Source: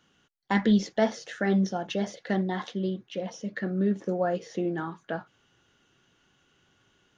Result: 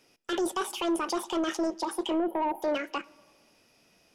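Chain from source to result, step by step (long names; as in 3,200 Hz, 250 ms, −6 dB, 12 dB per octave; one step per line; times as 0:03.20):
time-frequency box erased 0:03.78–0:04.55, 590–6,100 Hz
in parallel at +3 dB: output level in coarse steps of 16 dB
on the sum: brickwall limiter −18.5 dBFS, peak gain reduction 10 dB
soft clipping −21.5 dBFS, distortion −17 dB
on a send at −22 dB: convolution reverb RT60 2.6 s, pre-delay 3 ms
on the sum: wrong playback speed 45 rpm record played at 78 rpm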